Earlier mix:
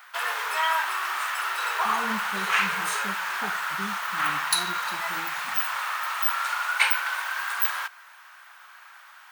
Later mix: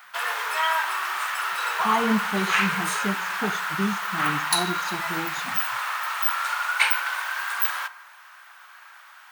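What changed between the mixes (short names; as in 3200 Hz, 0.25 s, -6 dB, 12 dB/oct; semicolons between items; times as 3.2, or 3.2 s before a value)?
speech +11.5 dB; background: send on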